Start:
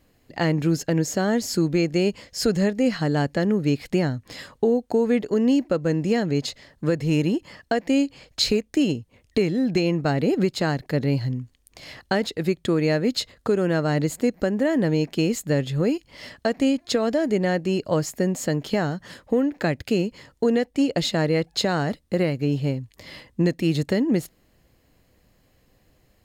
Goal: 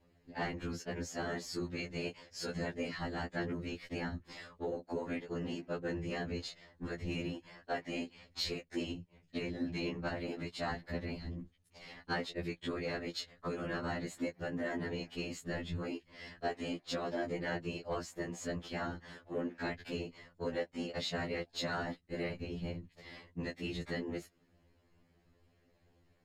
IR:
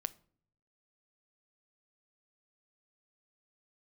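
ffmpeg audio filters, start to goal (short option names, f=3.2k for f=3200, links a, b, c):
-filter_complex "[0:a]aemphasis=mode=reproduction:type=50fm,acrossover=split=810[a][b];[a]acompressor=threshold=-28dB:ratio=12[c];[c][b]amix=inputs=2:normalize=0,afftfilt=real='hypot(re,im)*cos(2*PI*random(0))':imag='hypot(re,im)*sin(2*PI*random(1))':win_size=512:overlap=0.75,asoftclip=type=tanh:threshold=-22.5dB,afftfilt=real='re*2*eq(mod(b,4),0)':imag='im*2*eq(mod(b,4),0)':win_size=2048:overlap=0.75"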